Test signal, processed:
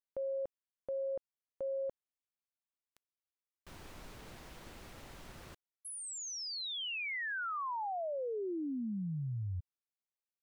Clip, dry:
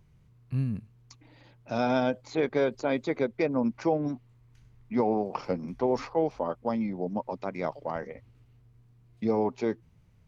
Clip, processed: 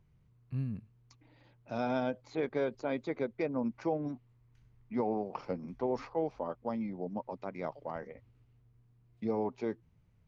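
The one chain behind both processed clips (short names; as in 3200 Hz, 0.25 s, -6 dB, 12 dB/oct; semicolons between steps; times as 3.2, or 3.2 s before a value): high shelf 5300 Hz -8.5 dB; gain -6.5 dB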